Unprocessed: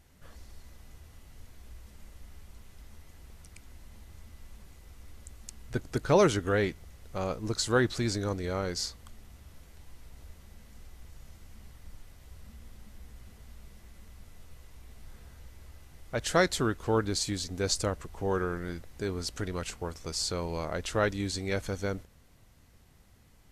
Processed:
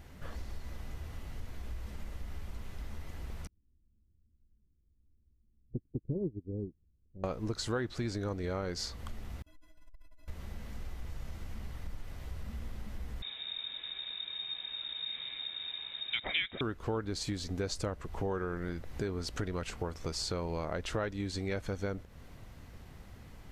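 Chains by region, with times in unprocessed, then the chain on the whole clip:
3.47–7.24 s: inverse Chebyshev low-pass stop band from 1.2 kHz, stop band 60 dB + upward expansion 2.5:1, over -44 dBFS
9.42–10.28 s: gate with hold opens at -41 dBFS, closes at -49 dBFS + inharmonic resonator 300 Hz, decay 0.24 s, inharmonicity 0.03 + transformer saturation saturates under 47 Hz
13.22–16.61 s: peaking EQ 1.4 kHz +11 dB 0.33 oct + frequency inversion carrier 3.7 kHz
whole clip: peaking EQ 10 kHz -10 dB 2 oct; compression 4:1, threshold -44 dBFS; trim +9.5 dB

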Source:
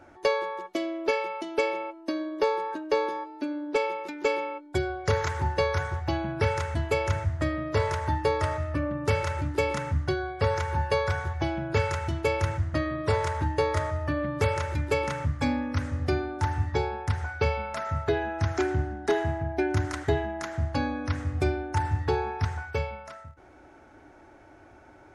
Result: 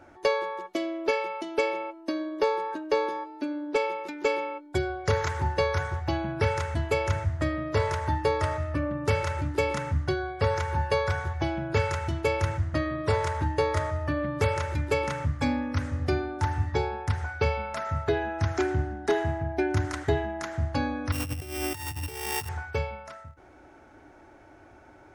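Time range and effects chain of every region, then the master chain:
21.12–22.49 s: sorted samples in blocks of 16 samples + treble shelf 6.4 kHz +10.5 dB + compressor with a negative ratio -34 dBFS
whole clip: none

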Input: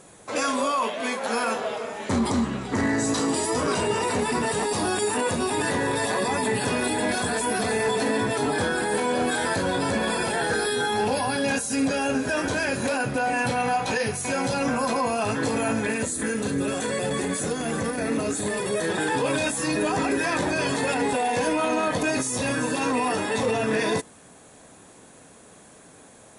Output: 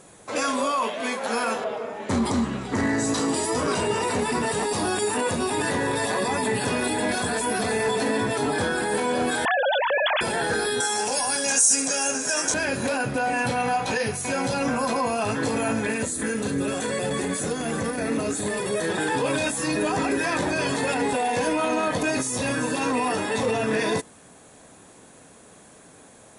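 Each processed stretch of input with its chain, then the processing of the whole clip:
1.64–2.09 s: high-pass 460 Hz 6 dB/octave + tilt EQ -3.5 dB/octave
9.45–10.21 s: formants replaced by sine waves + level flattener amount 70%
10.80–12.54 s: high-pass 610 Hz 6 dB/octave + high-order bell 7.1 kHz +15.5 dB 1 oct
whole clip: none

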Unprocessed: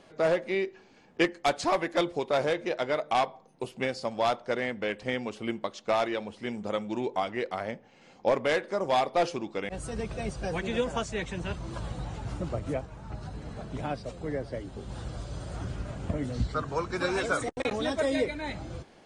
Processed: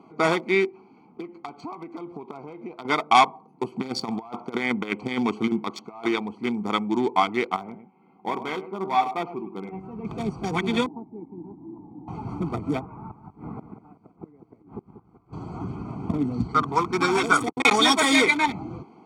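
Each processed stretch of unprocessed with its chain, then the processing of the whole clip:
0.66–2.85 s: partial rectifier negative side -3 dB + low-pass 5.9 kHz + compression, threshold -39 dBFS
3.72–6.11 s: compressor with a negative ratio -33 dBFS, ratio -0.5 + high-pass 71 Hz
7.56–10.05 s: low-pass 2.3 kHz + feedback comb 190 Hz, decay 0.2 s, mix 70% + delay 105 ms -9.5 dB
10.86–12.08 s: one-bit delta coder 32 kbps, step -38.5 dBFS + cascade formant filter u + peaking EQ 66 Hz -6.5 dB 2.1 oct
12.80–15.33 s: resonant high shelf 2.7 kHz -12.5 dB, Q 1.5 + inverted gate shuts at -29 dBFS, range -27 dB + bit-crushed delay 189 ms, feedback 35%, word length 11-bit, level -10.5 dB
17.64–18.46 s: high-pass 79 Hz + treble shelf 7 kHz +9 dB + overdrive pedal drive 14 dB, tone 7.4 kHz, clips at -16 dBFS
whole clip: local Wiener filter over 25 samples; high-pass 230 Hz 12 dB/octave; comb 0.9 ms, depth 96%; trim +8.5 dB

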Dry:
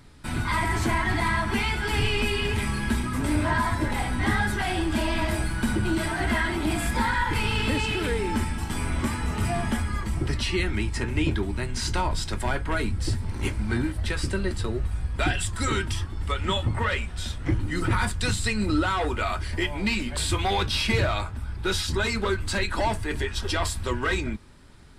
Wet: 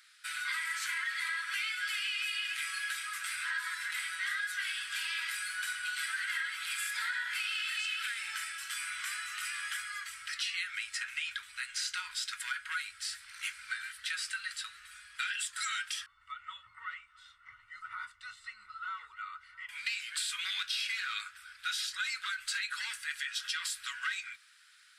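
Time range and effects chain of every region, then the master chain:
16.06–19.69 s: Savitzky-Golay filter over 65 samples + delay 666 ms -21 dB
whole clip: elliptic high-pass 1.4 kHz, stop band 50 dB; compression, threshold -32 dBFS

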